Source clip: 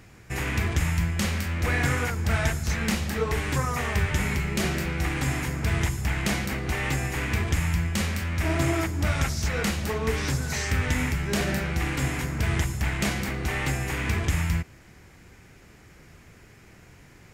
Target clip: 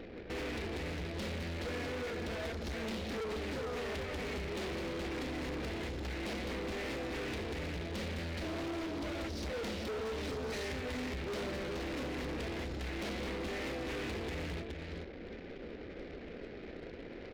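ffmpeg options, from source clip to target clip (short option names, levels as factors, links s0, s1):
-filter_complex "[0:a]acrusher=bits=2:mode=log:mix=0:aa=0.000001,aemphasis=mode=reproduction:type=50fm,bandreject=f=50:t=h:w=6,bandreject=f=100:t=h:w=6,bandreject=f=150:t=h:w=6,bandreject=f=200:t=h:w=6,acompressor=threshold=0.0158:ratio=5,equalizer=f=125:t=o:w=1:g=-11,equalizer=f=250:t=o:w=1:g=6,equalizer=f=500:t=o:w=1:g=12,equalizer=f=1000:t=o:w=1:g=-7,equalizer=f=4000:t=o:w=1:g=9,equalizer=f=8000:t=o:w=1:g=-9,asplit=2[s0][s1];[s1]aecho=0:1:420:0.447[s2];[s0][s2]amix=inputs=2:normalize=0,anlmdn=0.00251,asoftclip=type=hard:threshold=0.0119,volume=1.26"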